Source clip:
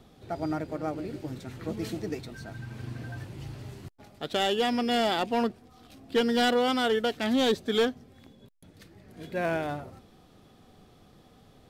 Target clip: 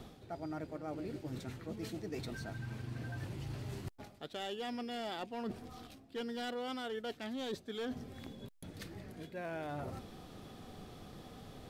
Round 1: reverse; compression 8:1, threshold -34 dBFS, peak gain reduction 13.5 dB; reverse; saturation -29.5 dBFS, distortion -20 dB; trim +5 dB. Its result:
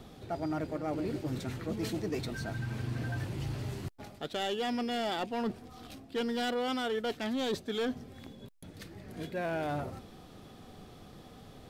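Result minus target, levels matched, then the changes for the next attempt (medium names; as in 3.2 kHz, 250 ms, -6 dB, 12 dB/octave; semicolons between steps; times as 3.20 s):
compression: peak gain reduction -9 dB
change: compression 8:1, threshold -44 dBFS, peak gain reduction 22 dB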